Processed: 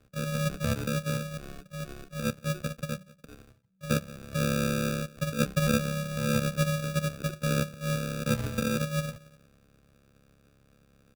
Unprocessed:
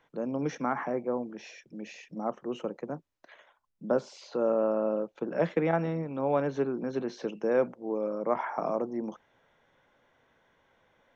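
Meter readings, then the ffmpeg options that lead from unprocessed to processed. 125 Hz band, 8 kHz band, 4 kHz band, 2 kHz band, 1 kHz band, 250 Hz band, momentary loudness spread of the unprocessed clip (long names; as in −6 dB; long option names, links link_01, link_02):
+11.5 dB, can't be measured, +14.5 dB, +6.5 dB, −3.5 dB, +2.0 dB, 13 LU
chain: -filter_complex "[0:a]asplit=2[link_01][link_02];[link_02]adelay=178,lowpass=frequency=970:poles=1,volume=-22dB,asplit=2[link_03][link_04];[link_04]adelay=178,lowpass=frequency=970:poles=1,volume=0.32[link_05];[link_01][link_03][link_05]amix=inputs=3:normalize=0,afftfilt=real='hypot(re,im)*cos(PI*b)':imag='0':win_size=512:overlap=0.75,asplit=2[link_06][link_07];[link_07]acompressor=threshold=-44dB:ratio=12,volume=-2dB[link_08];[link_06][link_08]amix=inputs=2:normalize=0,acrusher=samples=40:mix=1:aa=0.000001,afreqshift=-190,volume=4dB"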